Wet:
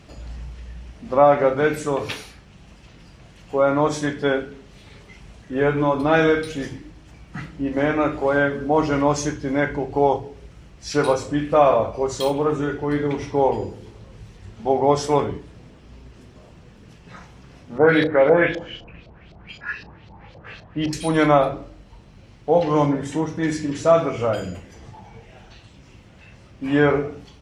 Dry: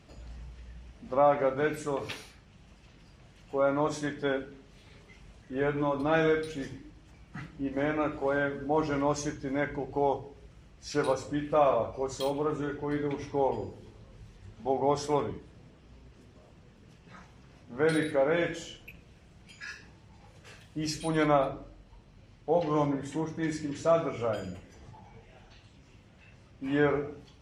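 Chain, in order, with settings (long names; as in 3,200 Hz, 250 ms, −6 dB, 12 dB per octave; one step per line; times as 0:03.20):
0:17.78–0:20.93: auto-filter low-pass saw up 3.9 Hz 590–4,800 Hz
double-tracking delay 35 ms −13.5 dB
level +9 dB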